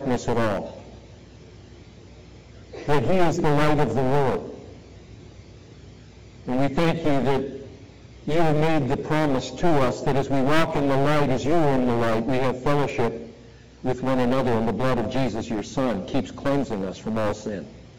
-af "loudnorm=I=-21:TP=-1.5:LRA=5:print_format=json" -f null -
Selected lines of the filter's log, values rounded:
"input_i" : "-24.0",
"input_tp" : "-7.7",
"input_lra" : "5.3",
"input_thresh" : "-35.2",